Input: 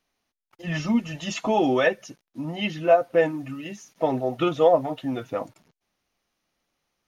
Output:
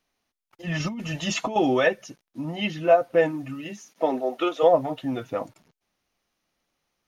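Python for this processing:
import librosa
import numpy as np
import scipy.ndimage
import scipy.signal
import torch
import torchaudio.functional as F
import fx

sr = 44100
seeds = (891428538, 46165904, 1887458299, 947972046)

y = fx.over_compress(x, sr, threshold_db=-28.0, ratio=-1.0, at=(0.8, 1.56))
y = fx.highpass(y, sr, hz=fx.line((3.68, 140.0), (4.62, 390.0)), slope=24, at=(3.68, 4.62), fade=0.02)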